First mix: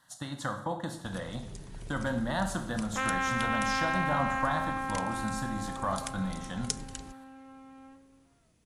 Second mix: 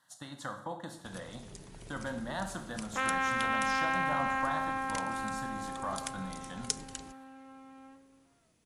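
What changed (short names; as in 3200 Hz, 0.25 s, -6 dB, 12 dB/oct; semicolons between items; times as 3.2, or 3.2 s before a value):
speech -5.0 dB; master: add low shelf 130 Hz -10 dB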